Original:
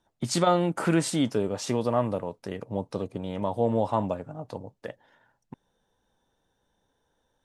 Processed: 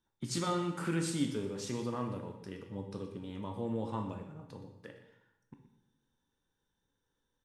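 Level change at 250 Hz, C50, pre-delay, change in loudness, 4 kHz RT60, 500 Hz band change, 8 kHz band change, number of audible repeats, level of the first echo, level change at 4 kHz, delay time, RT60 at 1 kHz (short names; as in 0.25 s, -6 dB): -8.0 dB, 6.5 dB, 12 ms, -10.0 dB, 0.80 s, -12.5 dB, -7.5 dB, 1, -13.5 dB, -7.5 dB, 0.121 s, 0.85 s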